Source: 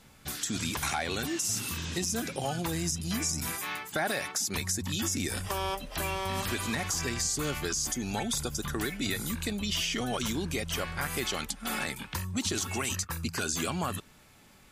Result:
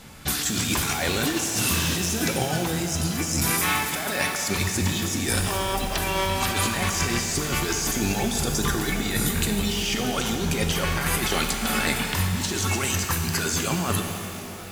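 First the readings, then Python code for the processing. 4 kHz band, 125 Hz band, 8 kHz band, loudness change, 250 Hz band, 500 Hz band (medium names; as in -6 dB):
+7.0 dB, +9.0 dB, +6.0 dB, +7.5 dB, +7.5 dB, +7.0 dB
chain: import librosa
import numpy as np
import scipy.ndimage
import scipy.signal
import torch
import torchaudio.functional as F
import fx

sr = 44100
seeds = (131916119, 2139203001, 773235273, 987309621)

y = fx.over_compress(x, sr, threshold_db=-34.0, ratio=-0.5)
y = fx.rev_shimmer(y, sr, seeds[0], rt60_s=3.0, semitones=12, shimmer_db=-8, drr_db=3.5)
y = y * librosa.db_to_amplitude(8.5)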